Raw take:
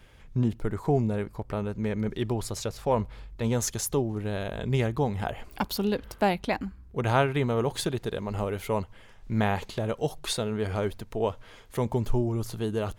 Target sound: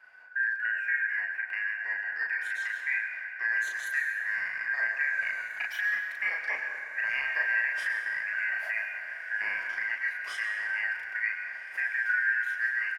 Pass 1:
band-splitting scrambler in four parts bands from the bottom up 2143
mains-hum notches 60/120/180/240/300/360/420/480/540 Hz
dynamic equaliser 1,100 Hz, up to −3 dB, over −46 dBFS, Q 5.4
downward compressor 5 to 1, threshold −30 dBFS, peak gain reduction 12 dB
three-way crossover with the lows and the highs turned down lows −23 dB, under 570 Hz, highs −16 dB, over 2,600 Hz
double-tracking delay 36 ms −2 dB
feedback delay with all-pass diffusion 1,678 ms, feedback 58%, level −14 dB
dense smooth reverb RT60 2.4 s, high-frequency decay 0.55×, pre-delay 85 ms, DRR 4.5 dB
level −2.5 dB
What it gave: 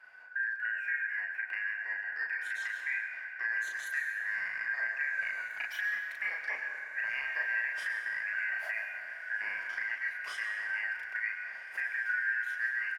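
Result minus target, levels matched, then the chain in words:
downward compressor: peak gain reduction +5 dB
band-splitting scrambler in four parts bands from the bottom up 2143
mains-hum notches 60/120/180/240/300/360/420/480/540 Hz
dynamic equaliser 1,100 Hz, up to −3 dB, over −46 dBFS, Q 5.4
downward compressor 5 to 1, threshold −23.5 dBFS, peak gain reduction 6.5 dB
three-way crossover with the lows and the highs turned down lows −23 dB, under 570 Hz, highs −16 dB, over 2,600 Hz
double-tracking delay 36 ms −2 dB
feedback delay with all-pass diffusion 1,678 ms, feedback 58%, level −14 dB
dense smooth reverb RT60 2.4 s, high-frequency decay 0.55×, pre-delay 85 ms, DRR 4.5 dB
level −2.5 dB

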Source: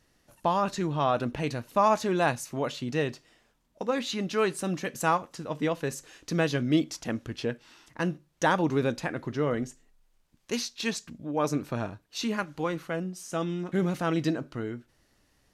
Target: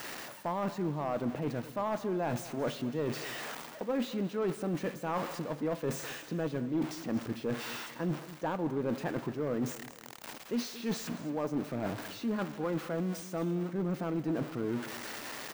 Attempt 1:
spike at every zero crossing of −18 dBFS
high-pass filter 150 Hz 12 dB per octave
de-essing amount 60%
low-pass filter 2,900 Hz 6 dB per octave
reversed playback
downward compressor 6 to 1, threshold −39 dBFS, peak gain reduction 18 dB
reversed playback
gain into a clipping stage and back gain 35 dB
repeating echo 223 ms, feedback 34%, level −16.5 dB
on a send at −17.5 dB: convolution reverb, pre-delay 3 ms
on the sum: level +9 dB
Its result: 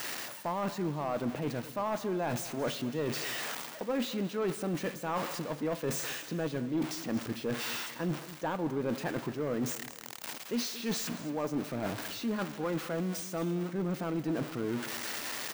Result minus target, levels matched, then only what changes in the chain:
4,000 Hz band +4.5 dB
change: low-pass filter 1,300 Hz 6 dB per octave

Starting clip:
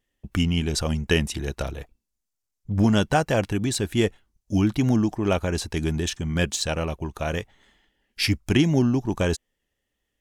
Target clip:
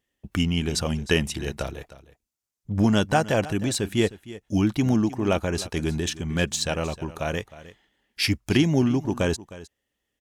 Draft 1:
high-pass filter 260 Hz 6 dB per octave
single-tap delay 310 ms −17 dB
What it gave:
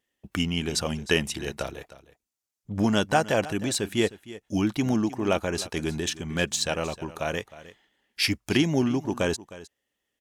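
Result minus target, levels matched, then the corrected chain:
125 Hz band −3.5 dB
high-pass filter 82 Hz 6 dB per octave
single-tap delay 310 ms −17 dB

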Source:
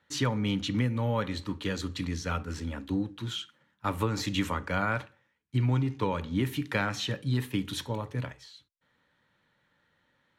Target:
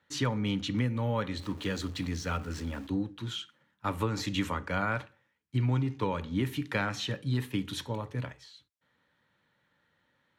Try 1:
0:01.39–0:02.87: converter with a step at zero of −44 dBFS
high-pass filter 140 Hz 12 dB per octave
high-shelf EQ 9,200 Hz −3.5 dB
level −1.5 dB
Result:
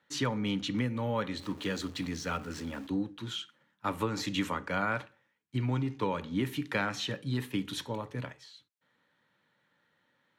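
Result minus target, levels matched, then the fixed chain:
125 Hz band −3.0 dB
0:01.39–0:02.87: converter with a step at zero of −44 dBFS
high-pass filter 49 Hz 12 dB per octave
high-shelf EQ 9,200 Hz −3.5 dB
level −1.5 dB

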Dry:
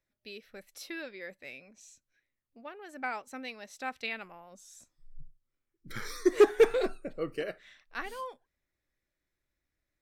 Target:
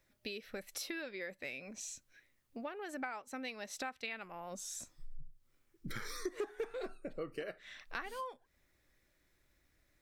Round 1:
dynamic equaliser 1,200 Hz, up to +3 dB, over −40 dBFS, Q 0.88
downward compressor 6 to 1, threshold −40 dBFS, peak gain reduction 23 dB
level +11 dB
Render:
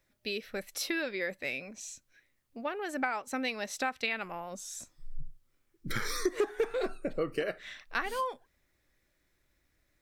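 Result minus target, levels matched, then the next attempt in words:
downward compressor: peak gain reduction −9.5 dB
dynamic equaliser 1,200 Hz, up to +3 dB, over −40 dBFS, Q 0.88
downward compressor 6 to 1, threshold −51.5 dBFS, peak gain reduction 32.5 dB
level +11 dB

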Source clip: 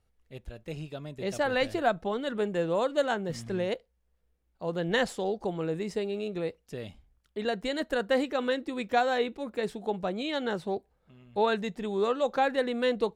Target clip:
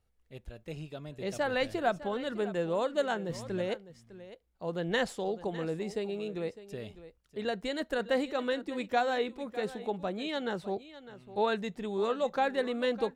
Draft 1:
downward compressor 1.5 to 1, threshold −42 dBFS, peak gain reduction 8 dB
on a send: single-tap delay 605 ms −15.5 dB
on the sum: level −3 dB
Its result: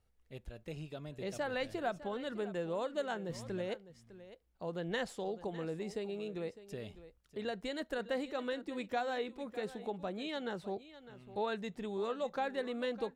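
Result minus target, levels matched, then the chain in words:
downward compressor: peak gain reduction +8 dB
on a send: single-tap delay 605 ms −15.5 dB
on the sum: level −3 dB

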